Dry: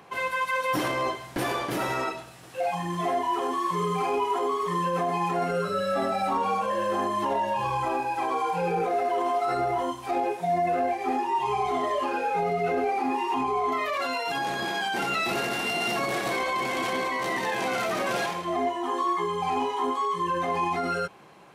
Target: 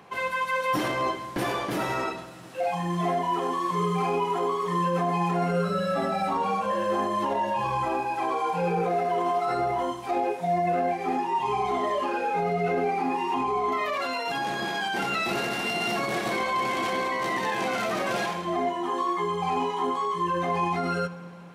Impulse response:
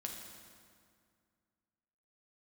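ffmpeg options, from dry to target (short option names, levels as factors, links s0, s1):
-filter_complex "[0:a]asplit=2[s0][s1];[s1]equalizer=f=170:w=1.5:g=8[s2];[1:a]atrim=start_sample=2205,lowpass=8500[s3];[s2][s3]afir=irnorm=-1:irlink=0,volume=0.473[s4];[s0][s4]amix=inputs=2:normalize=0,volume=0.75"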